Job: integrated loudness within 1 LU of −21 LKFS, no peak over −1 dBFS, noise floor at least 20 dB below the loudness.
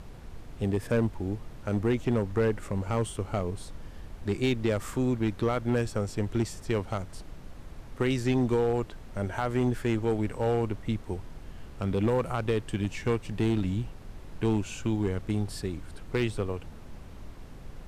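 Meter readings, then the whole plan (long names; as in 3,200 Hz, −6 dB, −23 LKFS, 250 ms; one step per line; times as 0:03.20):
share of clipped samples 0.9%; peaks flattened at −19.0 dBFS; background noise floor −45 dBFS; target noise floor −50 dBFS; integrated loudness −30.0 LKFS; sample peak −19.0 dBFS; target loudness −21.0 LKFS
→ clipped peaks rebuilt −19 dBFS
noise reduction from a noise print 6 dB
level +9 dB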